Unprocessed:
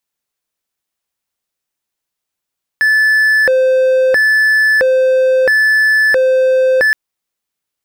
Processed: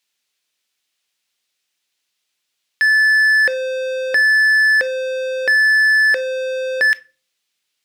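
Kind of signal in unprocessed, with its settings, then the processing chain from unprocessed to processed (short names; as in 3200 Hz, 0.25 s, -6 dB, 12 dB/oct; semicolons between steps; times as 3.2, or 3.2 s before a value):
siren hi-lo 519–1740 Hz 0.75/s triangle -6 dBFS 4.12 s
limiter -15 dBFS; weighting filter D; shoebox room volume 240 m³, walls furnished, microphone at 0.38 m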